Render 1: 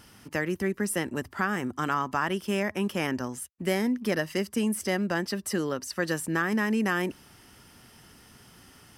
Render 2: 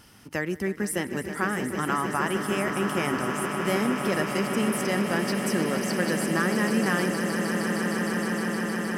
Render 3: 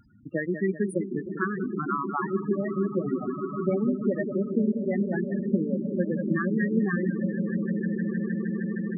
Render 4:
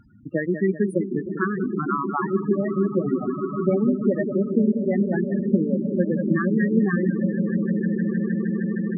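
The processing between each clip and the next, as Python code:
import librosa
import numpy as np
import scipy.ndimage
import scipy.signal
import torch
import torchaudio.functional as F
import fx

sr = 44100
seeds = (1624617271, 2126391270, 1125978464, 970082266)

y1 = fx.echo_swell(x, sr, ms=155, loudest=8, wet_db=-10.5)
y2 = fx.transient(y1, sr, attack_db=6, sustain_db=-8)
y2 = fx.echo_feedback(y2, sr, ms=194, feedback_pct=51, wet_db=-9)
y2 = fx.spec_topn(y2, sr, count=8)
y3 = fx.high_shelf(y2, sr, hz=2700.0, db=-9.5)
y3 = y3 * 10.0 ** (5.0 / 20.0)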